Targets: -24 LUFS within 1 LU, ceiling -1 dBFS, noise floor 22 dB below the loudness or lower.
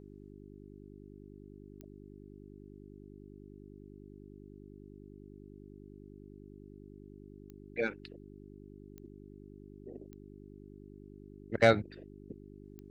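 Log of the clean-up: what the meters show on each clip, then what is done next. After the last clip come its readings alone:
clicks found 5; hum 50 Hz; highest harmonic 400 Hz; hum level -49 dBFS; loudness -32.0 LUFS; peak level -10.0 dBFS; loudness target -24.0 LUFS
-> de-click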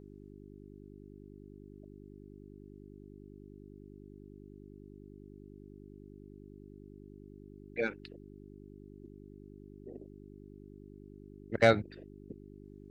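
clicks found 0; hum 50 Hz; highest harmonic 400 Hz; hum level -49 dBFS
-> de-hum 50 Hz, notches 8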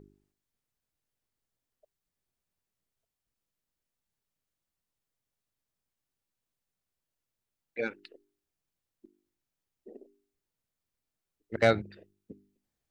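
hum not found; loudness -30.5 LUFS; peak level -10.0 dBFS; loudness target -24.0 LUFS
-> trim +6.5 dB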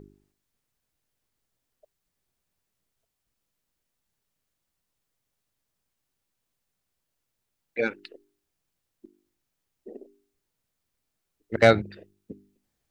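loudness -24.0 LUFS; peak level -3.5 dBFS; noise floor -82 dBFS

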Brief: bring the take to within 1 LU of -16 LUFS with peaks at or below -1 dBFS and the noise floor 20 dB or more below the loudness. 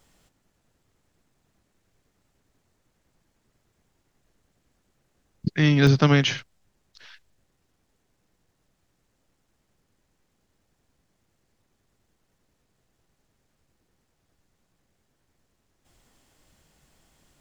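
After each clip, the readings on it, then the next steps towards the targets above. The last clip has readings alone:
dropouts 2; longest dropout 1.4 ms; loudness -21.0 LUFS; peak level -4.5 dBFS; loudness target -16.0 LUFS
-> interpolate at 5.87/6.39 s, 1.4 ms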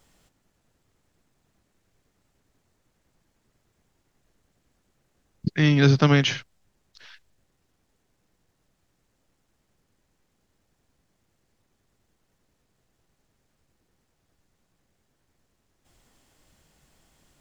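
dropouts 0; loudness -21.0 LUFS; peak level -4.5 dBFS; loudness target -16.0 LUFS
-> trim +5 dB; peak limiter -1 dBFS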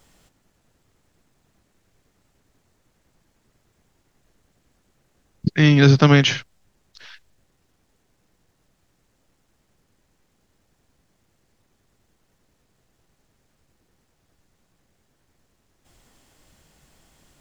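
loudness -16.0 LUFS; peak level -1.0 dBFS; noise floor -68 dBFS

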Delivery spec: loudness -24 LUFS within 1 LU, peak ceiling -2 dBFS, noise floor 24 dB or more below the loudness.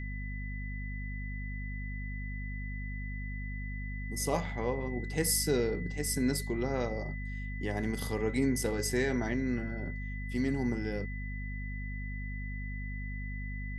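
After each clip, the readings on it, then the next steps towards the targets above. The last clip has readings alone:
hum 50 Hz; highest harmonic 250 Hz; hum level -36 dBFS; steady tone 2 kHz; tone level -44 dBFS; loudness -34.5 LUFS; peak level -16.5 dBFS; loudness target -24.0 LUFS
-> hum notches 50/100/150/200/250 Hz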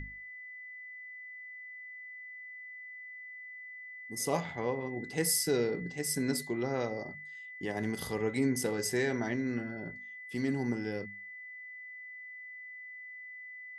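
hum not found; steady tone 2 kHz; tone level -44 dBFS
-> band-stop 2 kHz, Q 30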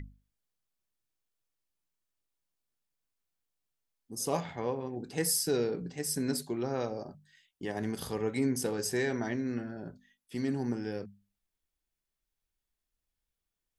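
steady tone not found; loudness -33.5 LUFS; peak level -16.5 dBFS; loudness target -24.0 LUFS
-> trim +9.5 dB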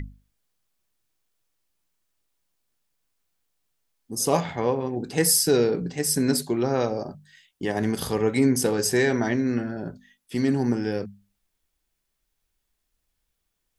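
loudness -24.0 LUFS; peak level -7.0 dBFS; noise floor -78 dBFS

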